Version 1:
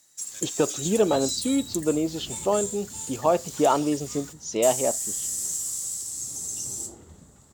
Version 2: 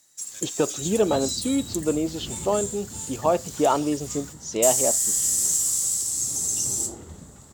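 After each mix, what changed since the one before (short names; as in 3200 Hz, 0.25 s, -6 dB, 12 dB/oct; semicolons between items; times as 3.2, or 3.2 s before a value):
second sound +7.0 dB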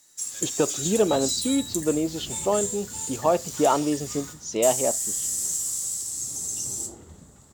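second sound -5.0 dB; reverb: on, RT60 0.65 s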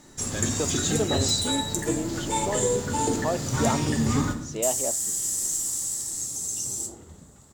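speech -6.5 dB; first sound: remove pre-emphasis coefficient 0.97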